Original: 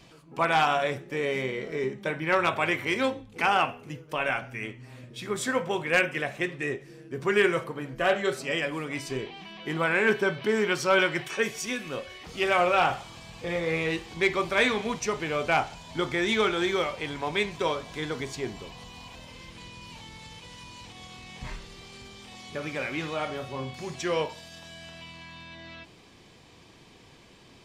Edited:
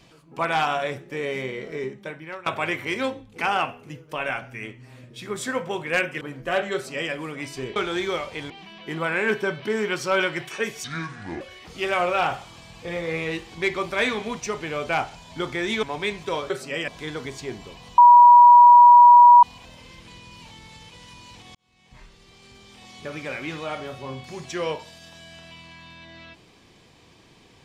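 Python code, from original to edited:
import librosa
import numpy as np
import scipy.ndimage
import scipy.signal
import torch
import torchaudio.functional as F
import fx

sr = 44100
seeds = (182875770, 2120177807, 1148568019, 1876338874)

y = fx.edit(x, sr, fx.fade_out_to(start_s=1.75, length_s=0.71, floor_db=-21.5),
    fx.cut(start_s=6.21, length_s=1.53),
    fx.duplicate(start_s=8.27, length_s=0.38, to_s=17.83),
    fx.speed_span(start_s=11.63, length_s=0.37, speed=0.65),
    fx.move(start_s=16.42, length_s=0.74, to_s=9.29),
    fx.insert_tone(at_s=18.93, length_s=1.45, hz=966.0, db=-6.5),
    fx.fade_in_span(start_s=21.05, length_s=1.44), tone=tone)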